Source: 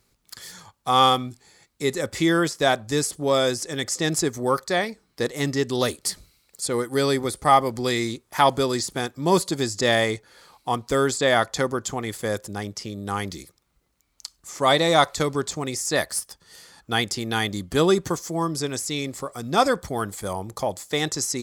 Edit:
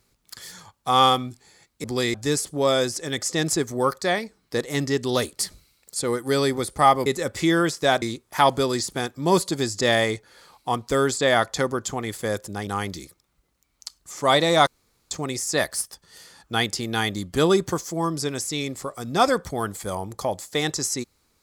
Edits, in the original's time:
1.84–2.8 swap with 7.72–8.02
12.67–13.05 cut
15.05–15.49 room tone

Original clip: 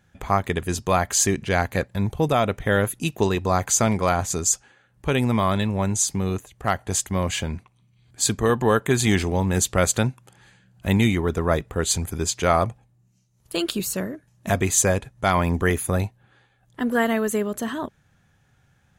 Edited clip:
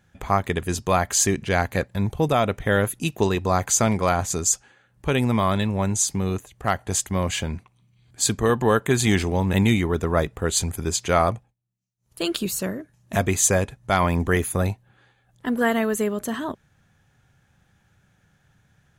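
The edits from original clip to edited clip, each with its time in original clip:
9.53–10.87 cut
12.54–13.66 dip -22 dB, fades 0.35 s equal-power

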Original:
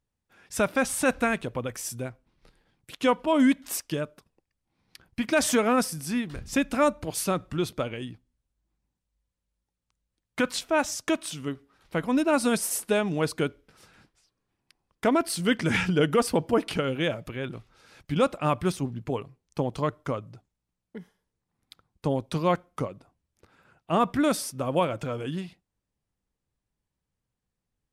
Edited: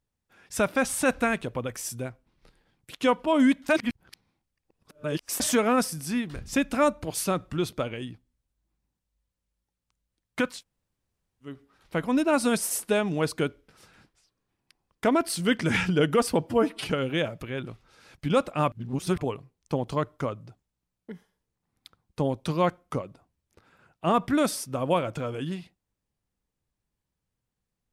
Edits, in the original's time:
3.69–5.4 reverse
10.52–11.52 room tone, crossfade 0.24 s
16.47–16.75 stretch 1.5×
18.58–19.07 reverse

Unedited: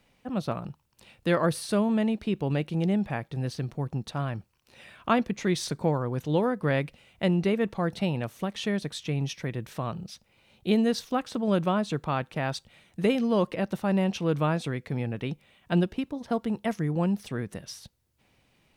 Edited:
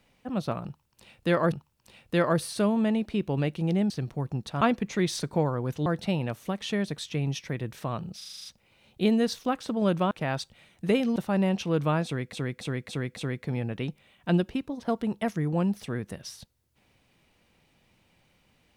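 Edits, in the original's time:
0.65–1.52 loop, 2 plays
3.03–3.51 cut
4.22–5.09 cut
6.34–7.8 cut
10.11 stutter 0.04 s, 8 plays
11.77–12.26 cut
13.31–13.71 cut
14.6–14.88 loop, 5 plays

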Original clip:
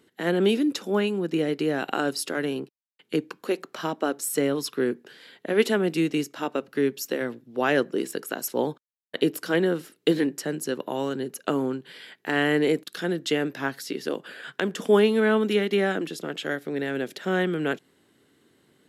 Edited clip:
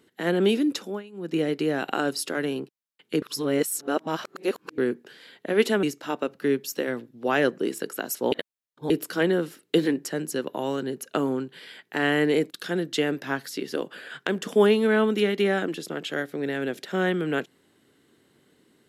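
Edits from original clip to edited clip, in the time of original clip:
0.78–1.37 dip -20 dB, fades 0.25 s
3.22–4.78 reverse
5.83–6.16 cut
8.65–9.23 reverse

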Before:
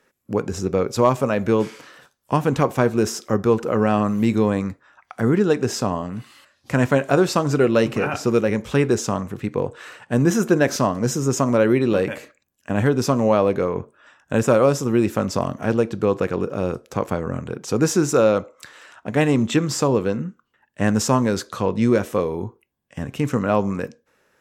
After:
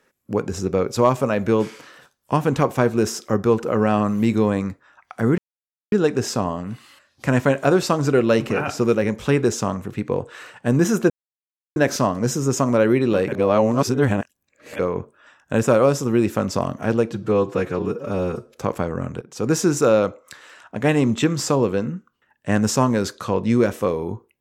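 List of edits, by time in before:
5.38 insert silence 0.54 s
10.56 insert silence 0.66 s
12.12–13.59 reverse
15.91–16.87 stretch 1.5×
17.53–17.99 fade in equal-power, from -17.5 dB

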